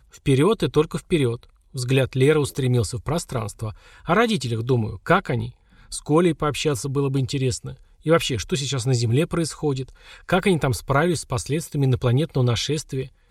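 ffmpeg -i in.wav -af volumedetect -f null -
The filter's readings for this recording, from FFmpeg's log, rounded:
mean_volume: -22.2 dB
max_volume: -5.5 dB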